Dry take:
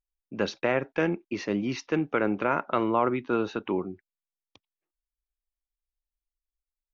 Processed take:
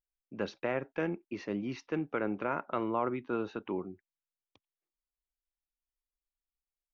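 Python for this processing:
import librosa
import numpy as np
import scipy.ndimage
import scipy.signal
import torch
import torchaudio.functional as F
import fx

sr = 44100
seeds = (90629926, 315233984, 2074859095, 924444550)

y = fx.high_shelf(x, sr, hz=3800.0, db=-8.0)
y = y * 10.0 ** (-7.0 / 20.0)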